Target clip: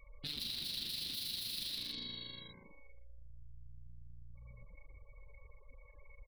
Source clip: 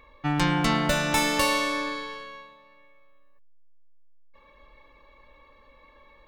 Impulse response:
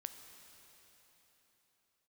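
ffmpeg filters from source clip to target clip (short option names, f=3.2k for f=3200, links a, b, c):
-filter_complex "[0:a]bandreject=f=60:t=h:w=6,bandreject=f=120:t=h:w=6,bandreject=f=180:t=h:w=6,bandreject=f=240:t=h:w=6,bandreject=f=300:t=h:w=6,bandreject=f=360:t=h:w=6,bandreject=f=420:t=h:w=6,bandreject=f=480:t=h:w=6,bandreject=f=540:t=h:w=6,asplit=7[a][b][c][d][e][f][g];[b]adelay=110,afreqshift=-59,volume=-6.5dB[h];[c]adelay=220,afreqshift=-118,volume=-12.3dB[i];[d]adelay=330,afreqshift=-177,volume=-18.2dB[j];[e]adelay=440,afreqshift=-236,volume=-24dB[k];[f]adelay=550,afreqshift=-295,volume=-29.9dB[l];[g]adelay=660,afreqshift=-354,volume=-35.7dB[m];[a][h][i][j][k][l][m]amix=inputs=7:normalize=0,aeval=exprs='(mod(13.3*val(0)+1,2)-1)/13.3':c=same,equalizer=f=630:t=o:w=0.84:g=13,asoftclip=type=tanh:threshold=-24.5dB,acontrast=48,afftfilt=real='re*gte(hypot(re,im),0.0141)':imag='im*gte(hypot(re,im),0.0141)':win_size=1024:overlap=0.75,firequalizer=gain_entry='entry(240,0);entry(380,-12);entry(630,-28);entry(900,-25);entry(4000,14);entry(6700,-15);entry(10000,0);entry(15000,-2)':delay=0.05:min_phase=1,acompressor=threshold=-47dB:ratio=2.5,tremolo=f=25:d=0.4"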